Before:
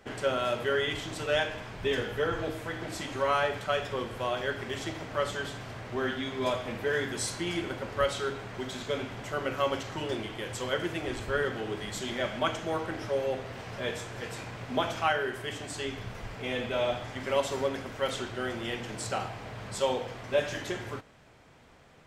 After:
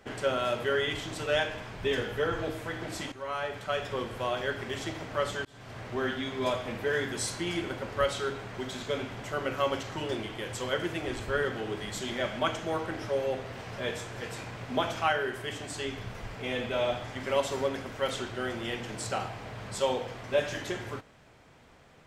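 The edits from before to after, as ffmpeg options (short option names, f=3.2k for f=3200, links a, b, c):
-filter_complex "[0:a]asplit=3[a][b][c];[a]atrim=end=3.12,asetpts=PTS-STARTPTS,afade=t=out:st=3.116:d=0.004:c=hsin:silence=0.211349[d];[b]atrim=start=3.12:end=5.45,asetpts=PTS-STARTPTS,afade=t=in:d=0.84:silence=0.211349,afade=t=out:st=2.326:d=0.004:c=hsin[e];[c]atrim=start=5.45,asetpts=PTS-STARTPTS,afade=t=in:d=0.36[f];[d][e][f]concat=n=3:v=0:a=1"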